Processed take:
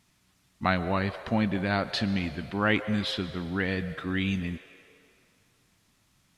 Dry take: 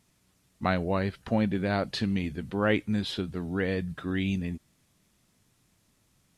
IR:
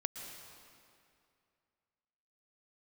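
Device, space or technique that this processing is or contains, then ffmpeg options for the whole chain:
filtered reverb send: -filter_complex "[0:a]asplit=2[s0][s1];[s1]highpass=f=460:w=0.5412,highpass=f=460:w=1.3066,lowpass=6300[s2];[1:a]atrim=start_sample=2205[s3];[s2][s3]afir=irnorm=-1:irlink=0,volume=0.631[s4];[s0][s4]amix=inputs=2:normalize=0"

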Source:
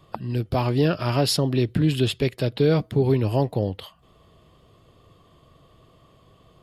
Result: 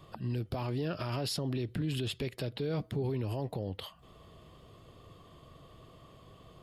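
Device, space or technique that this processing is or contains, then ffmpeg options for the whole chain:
stacked limiters: -af "alimiter=limit=0.211:level=0:latency=1:release=130,alimiter=limit=0.112:level=0:latency=1:release=34,alimiter=level_in=1.26:limit=0.0631:level=0:latency=1:release=255,volume=0.794"

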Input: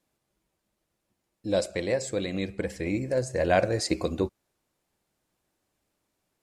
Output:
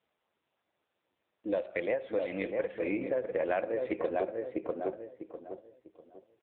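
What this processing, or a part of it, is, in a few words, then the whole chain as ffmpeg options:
voicemail: -filter_complex "[0:a]asplit=3[s0][s1][s2];[s0]afade=t=out:st=1.74:d=0.02[s3];[s1]bandreject=f=380:w=12,afade=t=in:st=1.74:d=0.02,afade=t=out:st=2.79:d=0.02[s4];[s2]afade=t=in:st=2.79:d=0.02[s5];[s3][s4][s5]amix=inputs=3:normalize=0,highpass=380,lowpass=3200,asplit=2[s6][s7];[s7]adelay=648,lowpass=f=1300:p=1,volume=0.531,asplit=2[s8][s9];[s9]adelay=648,lowpass=f=1300:p=1,volume=0.32,asplit=2[s10][s11];[s11]adelay=648,lowpass=f=1300:p=1,volume=0.32,asplit=2[s12][s13];[s13]adelay=648,lowpass=f=1300:p=1,volume=0.32[s14];[s6][s8][s10][s12][s14]amix=inputs=5:normalize=0,acompressor=threshold=0.0316:ratio=6,volume=1.5" -ar 8000 -c:a libopencore_amrnb -b:a 6700

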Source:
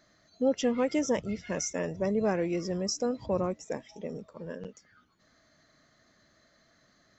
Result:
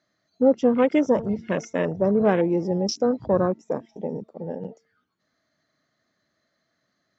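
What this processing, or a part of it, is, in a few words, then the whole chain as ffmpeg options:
over-cleaned archive recording: -af "highpass=100,lowpass=6400,bandreject=f=226.4:t=h:w=4,bandreject=f=452.8:t=h:w=4,bandreject=f=679.2:t=h:w=4,bandreject=f=905.6:t=h:w=4,bandreject=f=1132:t=h:w=4,bandreject=f=1358.4:t=h:w=4,bandreject=f=1584.8:t=h:w=4,afwtdn=0.0112,volume=2.66"

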